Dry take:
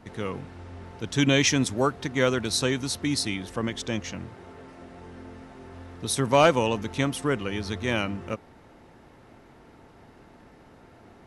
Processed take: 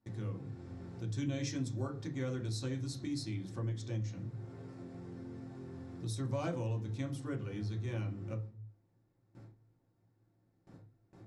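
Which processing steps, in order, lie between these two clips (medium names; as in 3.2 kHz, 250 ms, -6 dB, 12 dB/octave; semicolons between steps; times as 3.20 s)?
FFT filter 110 Hz 0 dB, 180 Hz -11 dB, 2.7 kHz -27 dB, 4.3 kHz -18 dB; gate with hold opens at -49 dBFS; reverberation RT60 0.40 s, pre-delay 3 ms, DRR 1.5 dB; compression 2:1, threshold -54 dBFS, peak gain reduction 13.5 dB; treble shelf 8.2 kHz -7.5 dB; trim +11 dB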